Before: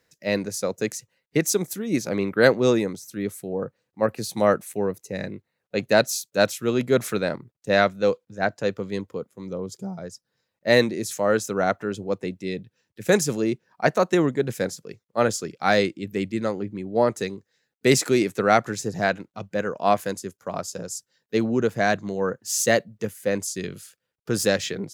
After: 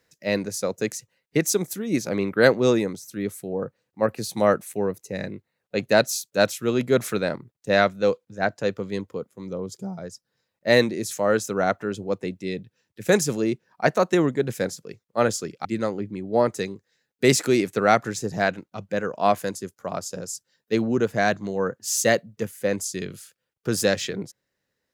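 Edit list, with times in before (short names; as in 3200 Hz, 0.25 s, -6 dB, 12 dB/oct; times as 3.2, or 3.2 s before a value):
15.65–16.27 cut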